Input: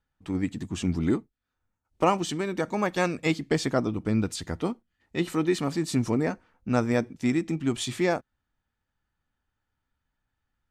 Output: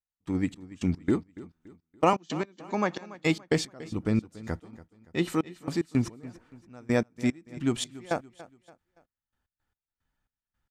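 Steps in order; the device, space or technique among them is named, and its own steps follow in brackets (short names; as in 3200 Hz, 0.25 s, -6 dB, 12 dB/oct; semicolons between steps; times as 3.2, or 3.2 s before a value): 2.13–3.14 Chebyshev band-pass 150–7100 Hz, order 5; trance gate with a delay (step gate "..xx..x.x" 111 bpm -24 dB; feedback echo 0.285 s, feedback 40%, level -18 dB)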